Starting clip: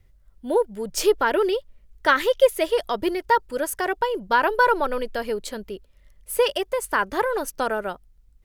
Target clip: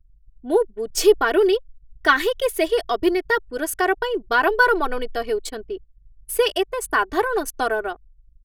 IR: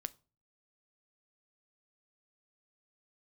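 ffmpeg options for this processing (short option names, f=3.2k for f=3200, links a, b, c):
-af "aecho=1:1:2.7:0.88,anlmdn=1.58"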